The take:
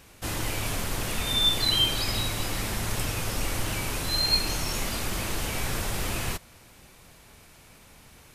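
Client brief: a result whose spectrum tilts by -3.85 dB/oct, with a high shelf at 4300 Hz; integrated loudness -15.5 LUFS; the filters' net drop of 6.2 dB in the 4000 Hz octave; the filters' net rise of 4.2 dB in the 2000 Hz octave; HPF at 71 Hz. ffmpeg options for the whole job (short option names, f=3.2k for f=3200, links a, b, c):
-af "highpass=71,equalizer=f=2k:t=o:g=8.5,equalizer=f=4k:t=o:g=-8,highshelf=f=4.3k:g=-5,volume=14dB"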